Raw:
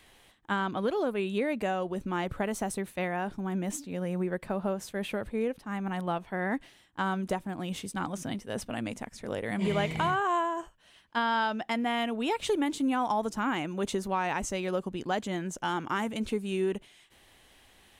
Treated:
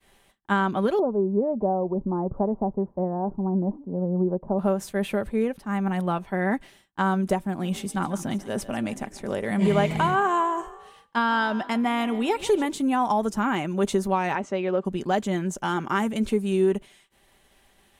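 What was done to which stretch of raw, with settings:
0.99–4.59 elliptic low-pass 970 Hz, stop band 80 dB
7.38–12.66 frequency-shifting echo 0.144 s, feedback 48%, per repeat +41 Hz, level -17 dB
14.35–14.85 BPF 220–2800 Hz
whole clip: expander -53 dBFS; bell 3400 Hz -4 dB 2 oct; comb 5.1 ms, depth 38%; gain +5.5 dB

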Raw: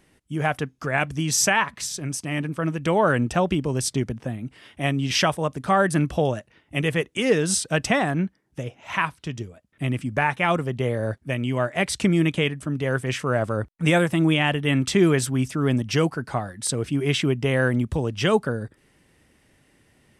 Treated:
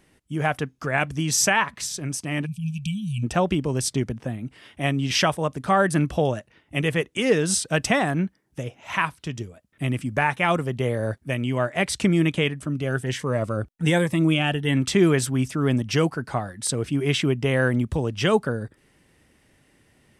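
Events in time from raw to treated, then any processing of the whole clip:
2.46–3.23 spectral delete 220–2300 Hz
7.73–11.44 high shelf 7600 Hz +5 dB
12.67–14.77 cascading phaser rising 1.3 Hz

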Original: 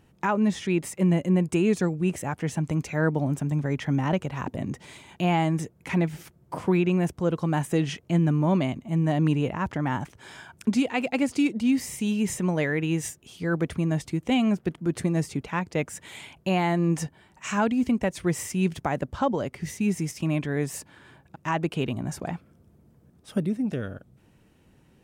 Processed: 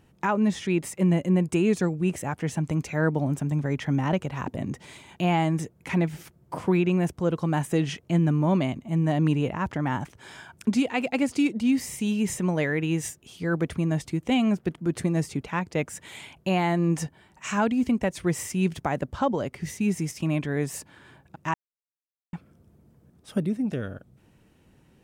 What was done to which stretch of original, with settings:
21.54–22.33 mute

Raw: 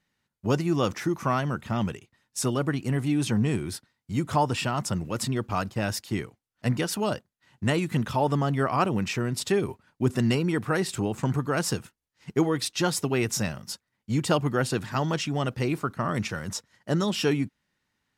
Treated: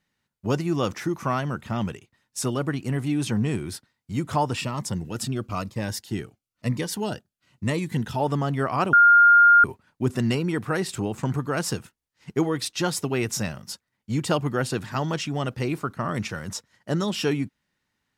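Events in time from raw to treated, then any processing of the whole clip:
4.61–8.2 cascading phaser falling 1 Hz
8.93–9.64 bleep 1410 Hz -10.5 dBFS

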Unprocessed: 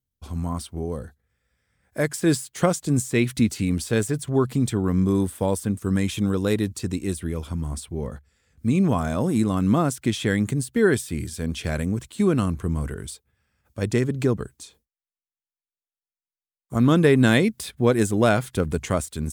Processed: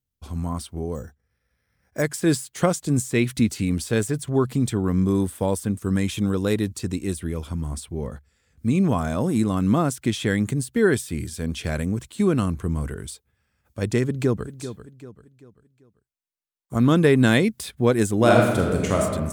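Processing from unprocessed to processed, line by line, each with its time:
0.95–2.02 careless resampling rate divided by 6×, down filtered, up hold
14.04–14.58 echo throw 0.39 s, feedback 40%, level -12 dB
18.15–19.01 reverb throw, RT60 1.3 s, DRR -0.5 dB

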